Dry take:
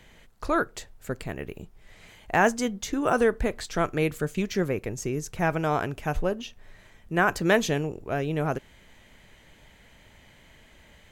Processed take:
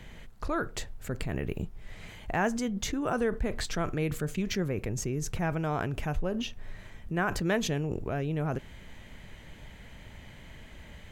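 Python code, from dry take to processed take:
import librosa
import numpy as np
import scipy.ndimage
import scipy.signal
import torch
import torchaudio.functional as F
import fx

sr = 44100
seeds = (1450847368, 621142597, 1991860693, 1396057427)

p1 = fx.bass_treble(x, sr, bass_db=6, treble_db=-3)
p2 = fx.over_compress(p1, sr, threshold_db=-34.0, ratio=-1.0)
p3 = p1 + (p2 * 10.0 ** (1.5 / 20.0))
y = p3 * 10.0 ** (-8.5 / 20.0)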